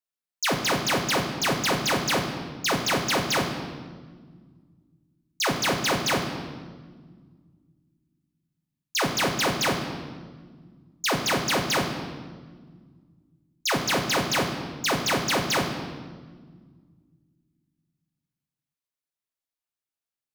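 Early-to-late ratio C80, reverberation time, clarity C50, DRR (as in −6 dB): 7.5 dB, 1.6 s, 6.0 dB, 1.5 dB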